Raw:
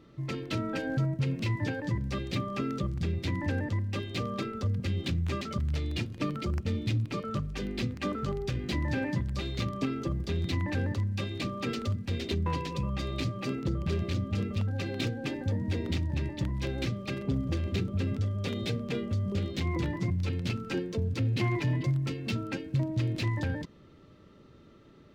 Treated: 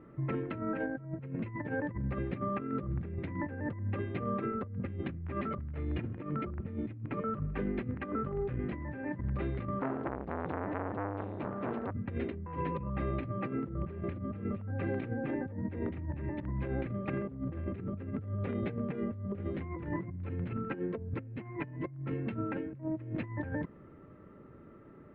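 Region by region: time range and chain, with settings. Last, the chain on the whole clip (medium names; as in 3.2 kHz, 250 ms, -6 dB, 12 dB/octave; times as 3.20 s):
9.79–11.91 s: peaking EQ 1.9 kHz -7 dB 1.6 oct + short-mantissa float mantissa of 2-bit + transformer saturation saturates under 1.6 kHz
whole clip: inverse Chebyshev low-pass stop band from 6.2 kHz, stop band 60 dB; bass shelf 89 Hz -5.5 dB; compressor with a negative ratio -35 dBFS, ratio -0.5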